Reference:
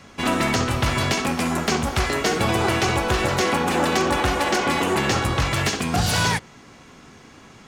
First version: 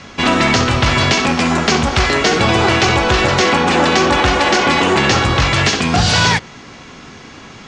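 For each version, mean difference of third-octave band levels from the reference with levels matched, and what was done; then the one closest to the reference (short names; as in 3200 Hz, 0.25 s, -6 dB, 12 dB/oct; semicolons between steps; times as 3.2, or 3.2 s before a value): 3.5 dB: Bessel low-pass 4400 Hz, order 8; high shelf 2900 Hz +8.5 dB; in parallel at -1.5 dB: limiter -17.5 dBFS, peak gain reduction 9.5 dB; on the sum: gain +4 dB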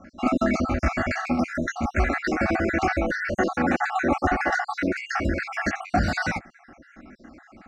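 13.5 dB: random spectral dropouts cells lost 55%; air absorption 190 m; fixed phaser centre 660 Hz, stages 8; gain +5 dB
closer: first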